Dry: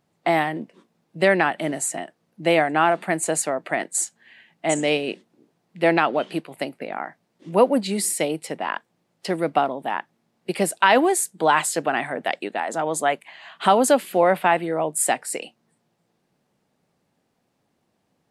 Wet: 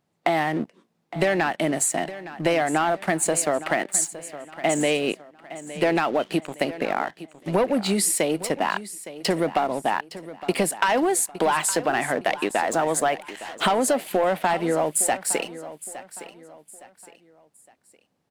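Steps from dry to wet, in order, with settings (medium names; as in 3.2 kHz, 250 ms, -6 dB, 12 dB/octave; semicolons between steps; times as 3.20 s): waveshaping leveller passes 2; compression, threshold -19 dBFS, peak gain reduction 11.5 dB; feedback delay 863 ms, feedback 35%, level -15 dB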